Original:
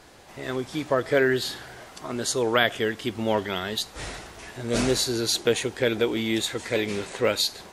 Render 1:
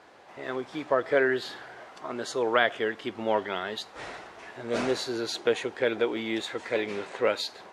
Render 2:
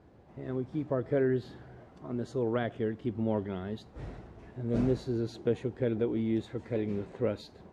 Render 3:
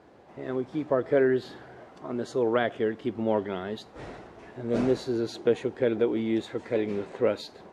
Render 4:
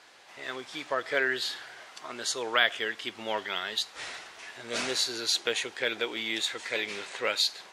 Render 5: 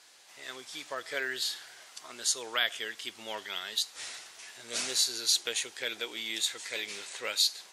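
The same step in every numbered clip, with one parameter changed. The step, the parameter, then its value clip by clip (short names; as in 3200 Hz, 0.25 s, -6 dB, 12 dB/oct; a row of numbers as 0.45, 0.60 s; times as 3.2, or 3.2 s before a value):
band-pass, frequency: 920, 120, 330, 2600, 6500 Hz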